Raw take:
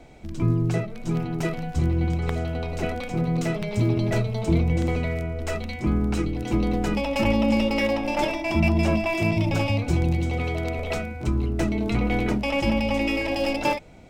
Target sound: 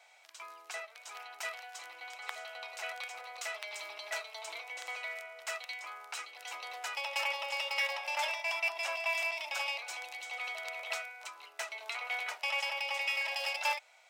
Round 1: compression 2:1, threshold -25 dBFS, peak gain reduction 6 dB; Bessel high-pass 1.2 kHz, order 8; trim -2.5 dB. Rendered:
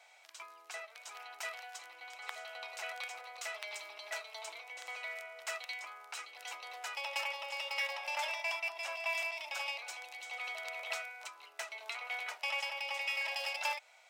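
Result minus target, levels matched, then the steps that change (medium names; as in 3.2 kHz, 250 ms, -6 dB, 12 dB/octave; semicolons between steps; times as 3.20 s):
compression: peak gain reduction +6 dB
remove: compression 2:1, threshold -25 dBFS, peak gain reduction 6 dB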